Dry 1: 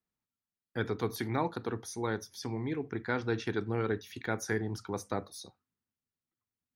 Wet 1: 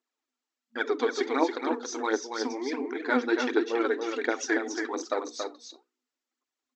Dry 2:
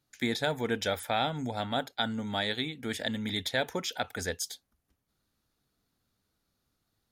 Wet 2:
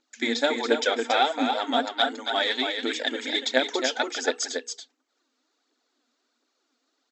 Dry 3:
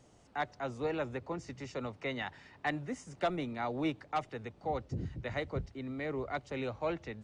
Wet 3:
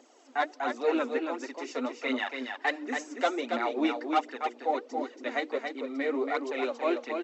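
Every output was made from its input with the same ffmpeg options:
-filter_complex "[0:a]bandreject=f=60:t=h:w=6,bandreject=f=120:t=h:w=6,bandreject=f=180:t=h:w=6,bandreject=f=240:t=h:w=6,bandreject=f=300:t=h:w=6,bandreject=f=360:t=h:w=6,bandreject=f=420:t=h:w=6,bandreject=f=480:t=h:w=6,aphaser=in_gain=1:out_gain=1:delay=4.5:decay=0.6:speed=1.4:type=triangular,afftfilt=real='re*between(b*sr/4096,230,8000)':imag='im*between(b*sr/4096,230,8000)':win_size=4096:overlap=0.75,asplit=2[s0][s1];[s1]aecho=0:1:279:0.531[s2];[s0][s2]amix=inputs=2:normalize=0,volume=1.68"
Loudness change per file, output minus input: +6.0 LU, +7.0 LU, +6.5 LU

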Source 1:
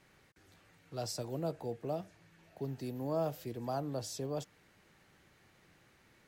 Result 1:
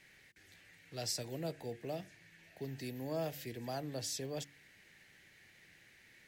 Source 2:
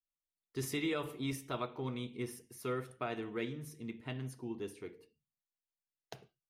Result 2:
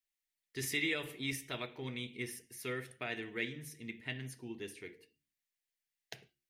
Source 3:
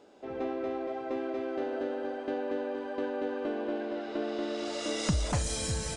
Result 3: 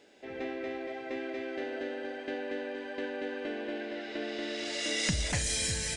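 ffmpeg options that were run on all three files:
-af "highshelf=f=1500:t=q:w=3:g=6.5,bandreject=f=70.9:t=h:w=4,bandreject=f=141.8:t=h:w=4,bandreject=f=212.7:t=h:w=4,bandreject=f=283.6:t=h:w=4,bandreject=f=354.5:t=h:w=4,volume=0.708"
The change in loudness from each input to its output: -2.5 LU, +0.5 LU, -1.0 LU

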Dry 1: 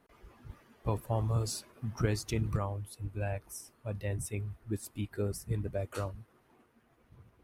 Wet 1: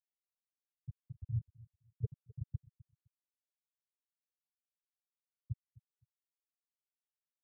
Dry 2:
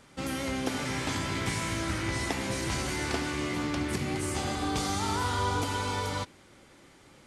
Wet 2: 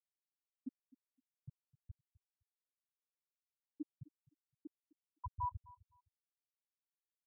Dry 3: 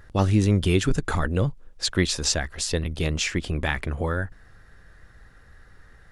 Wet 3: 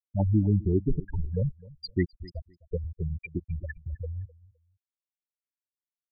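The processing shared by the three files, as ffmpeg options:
-filter_complex "[0:a]afftfilt=real='re*gte(hypot(re,im),0.355)':imag='im*gte(hypot(re,im),0.355)':win_size=1024:overlap=0.75,asplit=2[s0][s1];[s1]adelay=257,lowpass=f=3200:p=1,volume=0.0891,asplit=2[s2][s3];[s3]adelay=257,lowpass=f=3200:p=1,volume=0.21[s4];[s0][s2][s4]amix=inputs=3:normalize=0,volume=0.708"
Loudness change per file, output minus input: -9.0 LU, -16.5 LU, -5.5 LU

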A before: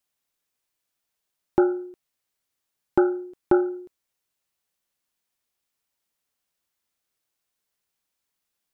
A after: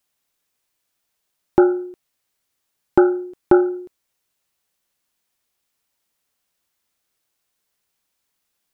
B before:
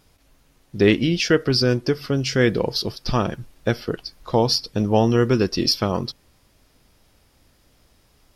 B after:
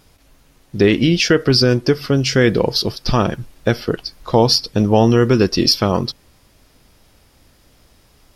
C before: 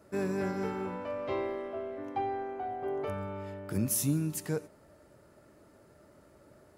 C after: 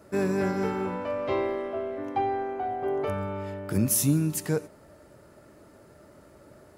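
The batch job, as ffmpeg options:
-af "alimiter=level_in=2.24:limit=0.891:release=50:level=0:latency=1,volume=0.891"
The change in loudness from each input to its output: +6.0 LU, +5.0 LU, +6.0 LU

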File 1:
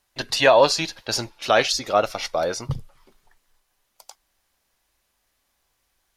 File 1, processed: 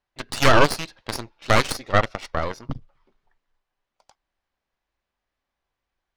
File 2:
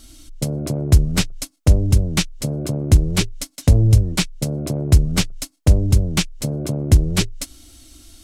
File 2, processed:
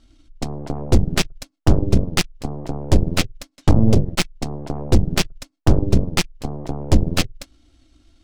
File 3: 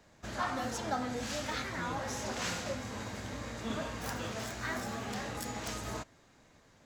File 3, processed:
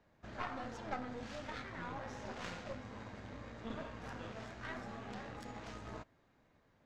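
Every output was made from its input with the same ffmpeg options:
-af "adynamicsmooth=sensitivity=1.5:basefreq=3500,aeval=exprs='0.841*(cos(1*acos(clip(val(0)/0.841,-1,1)))-cos(1*PI/2))+0.422*(cos(6*acos(clip(val(0)/0.841,-1,1)))-cos(6*PI/2))+0.0266*(cos(7*acos(clip(val(0)/0.841,-1,1)))-cos(7*PI/2))':c=same,volume=0.531"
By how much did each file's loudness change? -1.0 LU, -2.5 LU, -8.5 LU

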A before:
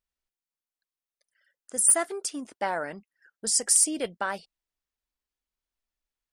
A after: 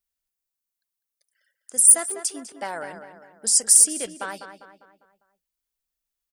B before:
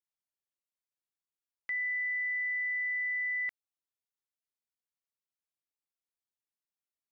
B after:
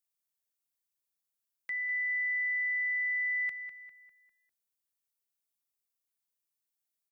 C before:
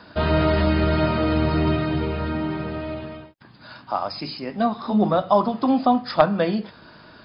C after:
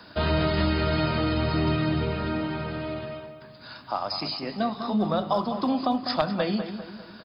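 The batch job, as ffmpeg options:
-filter_complex "[0:a]acrossover=split=140|3000[s0][s1][s2];[s1]acompressor=threshold=0.0891:ratio=2.5[s3];[s0][s3][s2]amix=inputs=3:normalize=0,crystalizer=i=2:c=0,asplit=2[s4][s5];[s5]adelay=200,lowpass=f=3000:p=1,volume=0.355,asplit=2[s6][s7];[s7]adelay=200,lowpass=f=3000:p=1,volume=0.47,asplit=2[s8][s9];[s9]adelay=200,lowpass=f=3000:p=1,volume=0.47,asplit=2[s10][s11];[s11]adelay=200,lowpass=f=3000:p=1,volume=0.47,asplit=2[s12][s13];[s13]adelay=200,lowpass=f=3000:p=1,volume=0.47[s14];[s6][s8][s10][s12][s14]amix=inputs=5:normalize=0[s15];[s4][s15]amix=inputs=2:normalize=0,volume=0.708"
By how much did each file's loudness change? +8.0 LU, +1.0 LU, -4.5 LU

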